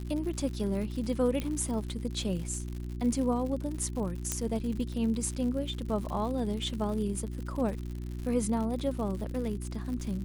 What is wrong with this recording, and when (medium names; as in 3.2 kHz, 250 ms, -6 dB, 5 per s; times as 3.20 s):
crackle 110 per s -37 dBFS
hum 60 Hz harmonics 6 -37 dBFS
1.40 s: pop -20 dBFS
4.32 s: pop -13 dBFS